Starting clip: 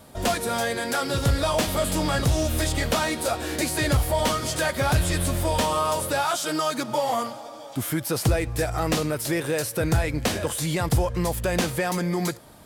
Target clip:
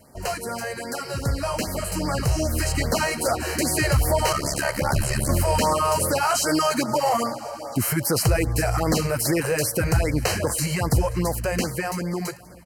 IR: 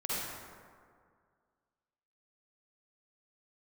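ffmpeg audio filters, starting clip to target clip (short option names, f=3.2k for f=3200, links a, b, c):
-filter_complex "[0:a]dynaudnorm=f=660:g=9:m=11.5dB,alimiter=limit=-8.5dB:level=0:latency=1:release=18,asplit=3[a][b][c];[a]afade=t=out:st=4.32:d=0.02[d];[b]aeval=exprs='val(0)*sin(2*PI*35*n/s)':c=same,afade=t=in:st=4.32:d=0.02,afade=t=out:st=5.28:d=0.02[e];[c]afade=t=in:st=5.28:d=0.02[f];[d][e][f]amix=inputs=3:normalize=0,asuperstop=centerf=3500:order=20:qfactor=4.6,aecho=1:1:530|1060|1590|2120:0.0841|0.0429|0.0219|0.0112,afftfilt=real='re*(1-between(b*sr/1024,220*pow(3300/220,0.5+0.5*sin(2*PI*2.5*pts/sr))/1.41,220*pow(3300/220,0.5+0.5*sin(2*PI*2.5*pts/sr))*1.41))':imag='im*(1-between(b*sr/1024,220*pow(3300/220,0.5+0.5*sin(2*PI*2.5*pts/sr))/1.41,220*pow(3300/220,0.5+0.5*sin(2*PI*2.5*pts/sr))*1.41))':win_size=1024:overlap=0.75,volume=-3.5dB"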